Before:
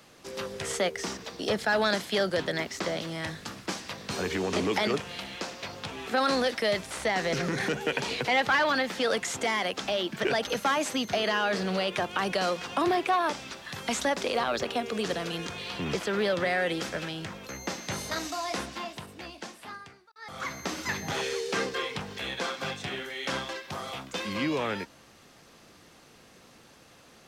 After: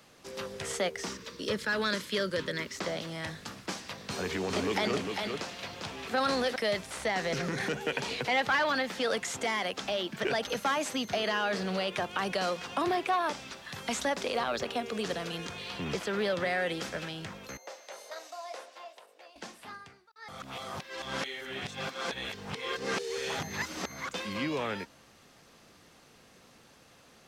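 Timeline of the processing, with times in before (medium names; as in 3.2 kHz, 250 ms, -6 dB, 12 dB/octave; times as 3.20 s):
1.09–2.76 s: Butterworth band-stop 740 Hz, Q 2.2
3.86–6.56 s: delay 400 ms -5 dB
17.57–19.36 s: ladder high-pass 480 Hz, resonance 55%
20.42–24.09 s: reverse
whole clip: peaking EQ 330 Hz -2.5 dB 0.25 oct; trim -3 dB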